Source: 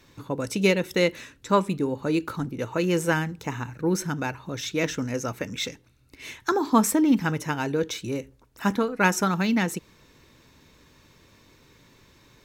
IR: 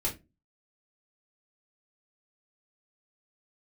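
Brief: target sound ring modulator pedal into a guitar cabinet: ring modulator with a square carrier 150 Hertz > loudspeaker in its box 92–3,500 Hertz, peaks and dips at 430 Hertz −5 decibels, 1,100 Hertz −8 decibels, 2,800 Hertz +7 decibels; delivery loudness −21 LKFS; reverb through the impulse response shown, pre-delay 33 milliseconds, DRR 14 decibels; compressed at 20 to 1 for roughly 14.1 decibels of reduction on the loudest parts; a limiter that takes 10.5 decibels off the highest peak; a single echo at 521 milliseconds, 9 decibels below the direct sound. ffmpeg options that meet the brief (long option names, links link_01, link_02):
-filter_complex "[0:a]acompressor=threshold=-28dB:ratio=20,alimiter=level_in=1.5dB:limit=-24dB:level=0:latency=1,volume=-1.5dB,aecho=1:1:521:0.355,asplit=2[link_01][link_02];[1:a]atrim=start_sample=2205,adelay=33[link_03];[link_02][link_03]afir=irnorm=-1:irlink=0,volume=-19dB[link_04];[link_01][link_04]amix=inputs=2:normalize=0,aeval=exprs='val(0)*sgn(sin(2*PI*150*n/s))':channel_layout=same,highpass=92,equalizer=frequency=430:width_type=q:width=4:gain=-5,equalizer=frequency=1100:width_type=q:width=4:gain=-8,equalizer=frequency=2800:width_type=q:width=4:gain=7,lowpass=frequency=3500:width=0.5412,lowpass=frequency=3500:width=1.3066,volume=16dB"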